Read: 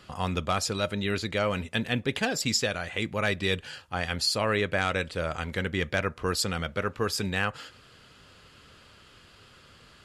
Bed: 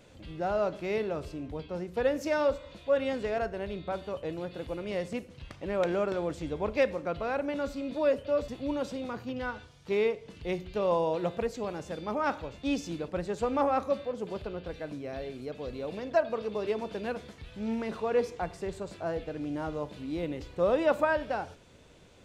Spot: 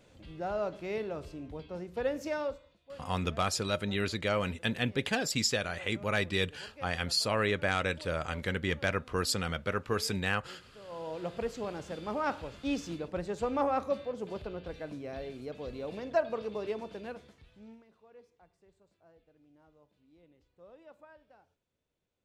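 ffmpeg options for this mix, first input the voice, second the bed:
ffmpeg -i stem1.wav -i stem2.wav -filter_complex "[0:a]adelay=2900,volume=-3dB[link_01];[1:a]volume=15dB,afade=type=out:start_time=2.26:duration=0.51:silence=0.133352,afade=type=in:start_time=10.87:duration=0.63:silence=0.105925,afade=type=out:start_time=16.38:duration=1.47:silence=0.0473151[link_02];[link_01][link_02]amix=inputs=2:normalize=0" out.wav

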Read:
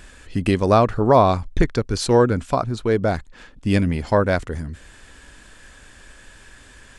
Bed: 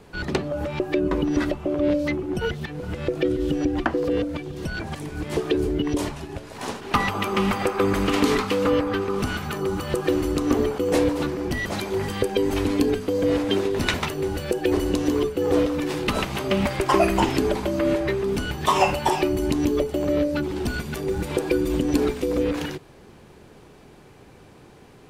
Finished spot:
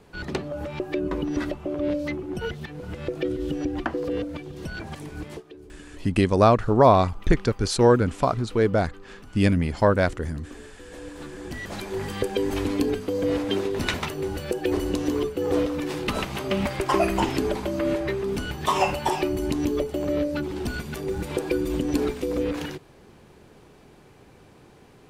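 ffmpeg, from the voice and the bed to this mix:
ffmpeg -i stem1.wav -i stem2.wav -filter_complex "[0:a]adelay=5700,volume=-1.5dB[link_01];[1:a]volume=15.5dB,afade=type=out:start_time=5.2:duration=0.23:silence=0.11885,afade=type=in:start_time=10.97:duration=1.23:silence=0.1[link_02];[link_01][link_02]amix=inputs=2:normalize=0" out.wav

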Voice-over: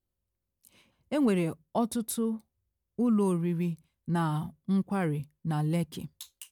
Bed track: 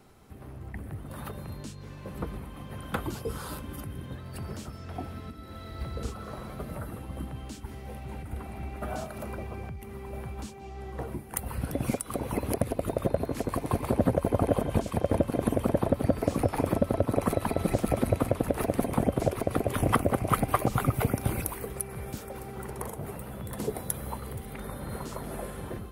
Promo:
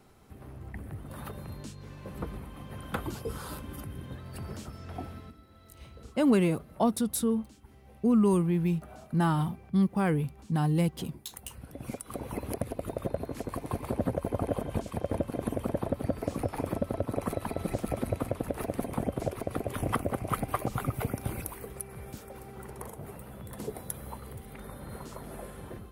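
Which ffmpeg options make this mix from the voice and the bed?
ffmpeg -i stem1.wav -i stem2.wav -filter_complex "[0:a]adelay=5050,volume=2.5dB[link_01];[1:a]volume=6.5dB,afade=type=out:start_time=5.04:duration=0.44:silence=0.251189,afade=type=in:start_time=11.72:duration=0.41:silence=0.375837[link_02];[link_01][link_02]amix=inputs=2:normalize=0" out.wav

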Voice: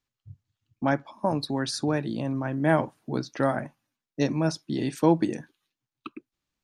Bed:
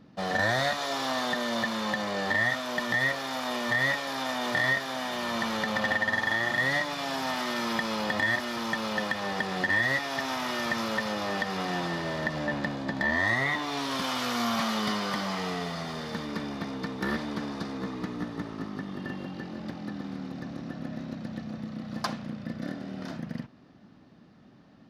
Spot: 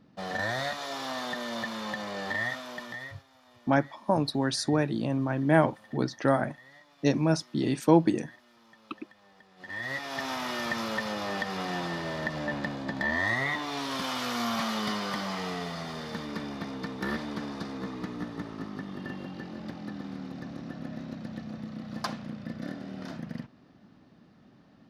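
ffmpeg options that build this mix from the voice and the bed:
ffmpeg -i stem1.wav -i stem2.wav -filter_complex "[0:a]adelay=2850,volume=0.5dB[link_01];[1:a]volume=20.5dB,afade=type=out:start_time=2.44:duration=0.8:silence=0.0749894,afade=type=in:start_time=9.57:duration=0.68:silence=0.0530884[link_02];[link_01][link_02]amix=inputs=2:normalize=0" out.wav

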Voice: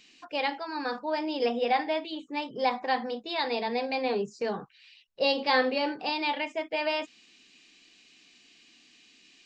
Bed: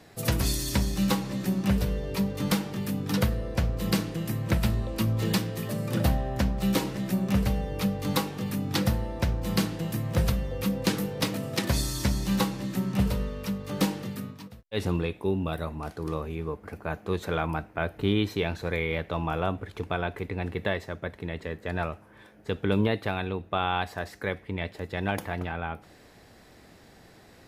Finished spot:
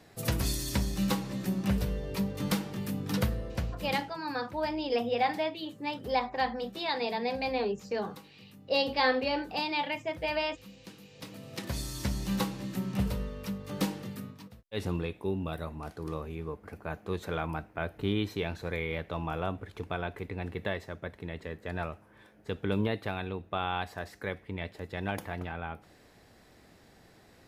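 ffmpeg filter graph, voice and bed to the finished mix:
ffmpeg -i stem1.wav -i stem2.wav -filter_complex "[0:a]adelay=3500,volume=-2dB[link_01];[1:a]volume=14.5dB,afade=type=out:start_time=3.34:duration=0.87:silence=0.105925,afade=type=in:start_time=11.09:duration=1.13:silence=0.11885[link_02];[link_01][link_02]amix=inputs=2:normalize=0" out.wav

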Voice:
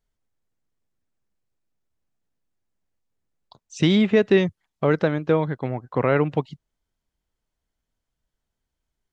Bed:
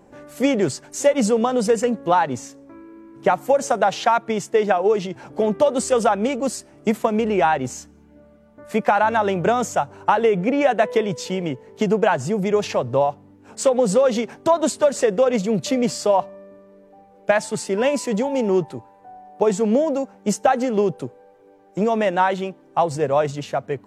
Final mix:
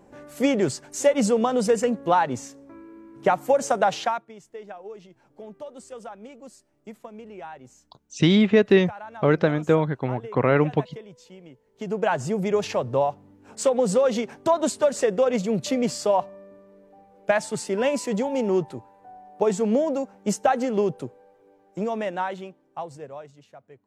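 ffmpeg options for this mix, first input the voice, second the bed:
ffmpeg -i stem1.wav -i stem2.wav -filter_complex "[0:a]adelay=4400,volume=0.5dB[link_01];[1:a]volume=15.5dB,afade=type=out:start_time=3.94:duration=0.32:silence=0.112202,afade=type=in:start_time=11.73:duration=0.43:silence=0.125893,afade=type=out:start_time=20.89:duration=2.39:silence=0.1[link_02];[link_01][link_02]amix=inputs=2:normalize=0" out.wav

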